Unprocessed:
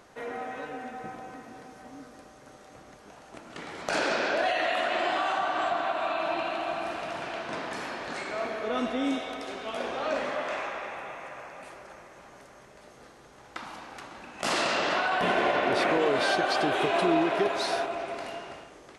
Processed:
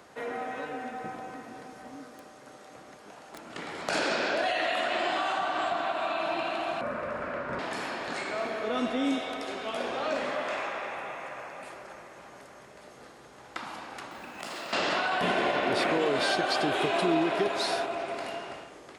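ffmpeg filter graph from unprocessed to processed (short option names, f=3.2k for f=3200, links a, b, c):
-filter_complex "[0:a]asettb=1/sr,asplit=3[a][b][c];[a]atrim=end=1.964[d];[b]atrim=start=1.96:end=3.41,asetpts=PTS-STARTPTS,afade=t=in:d=0.004:c=qsin,afade=t=out:st=1.446:d=0.004:c=qsin,lowshelf=f=89:g=-10,aeval=exprs='(mod(63.1*val(0)+1,2)-1)/63.1':c=same[e];[c]atrim=start=3.406[f];[d][e]acrossfade=d=0.004:c1=hsin:c2=qsin[g];[g][f]acrossfade=d=0.004:c1=qsin:c2=hsin,asettb=1/sr,asplit=3[h][i][j];[h]atrim=end=6.814[k];[i]atrim=start=6.81:end=7.59,asetpts=PTS-STARTPTS,afade=t=in:d=0.004:c=qsin,afade=t=out:st=0.776:d=0.004:c=qsin,highshelf=f=2.4k:t=q:w=1.5:g=-11.5,bandreject=f=920:w=6.7,afreqshift=-94[l];[j]atrim=start=7.586[m];[k][l]acrossfade=d=0.004:c1=hsin:c2=qsin[n];[n][m]acrossfade=d=0.004:c1=qsin:c2=hsin,asettb=1/sr,asplit=3[o][p][q];[o]atrim=end=14.114[r];[p]atrim=start=14.11:end=14.73,asetpts=PTS-STARTPTS,afade=t=in:d=0.004:c=qsin,afade=t=out:st=0.616:d=0.004:c=qsin,acompressor=threshold=-37dB:ratio=8:attack=3.2:release=140:knee=1:detection=peak,acrusher=bits=5:mode=log:mix=0:aa=0.000001[s];[q]atrim=start=14.726[t];[r][s]acrossfade=d=0.004:c1=hsin:c2=qsin[u];[u][t]acrossfade=d=0.004:c1=qsin:c2=hsin,highpass=f=95:p=1,bandreject=f=6k:w=16,acrossover=split=290|3000[v][w][x];[w]acompressor=threshold=-35dB:ratio=1.5[y];[v][y][x]amix=inputs=3:normalize=0,volume=2dB"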